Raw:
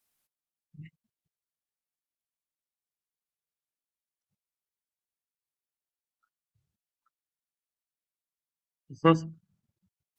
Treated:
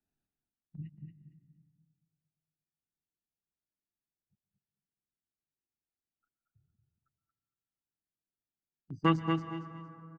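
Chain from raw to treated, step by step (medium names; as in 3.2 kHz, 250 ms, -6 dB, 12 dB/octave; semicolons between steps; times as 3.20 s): local Wiener filter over 41 samples; gate -55 dBFS, range -6 dB; peaking EQ 530 Hz -13 dB 0.44 oct; feedback delay 230 ms, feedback 19%, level -6.5 dB; on a send at -14 dB: reverberation RT60 1.8 s, pre-delay 113 ms; on the sum: three bands compressed up and down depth 40%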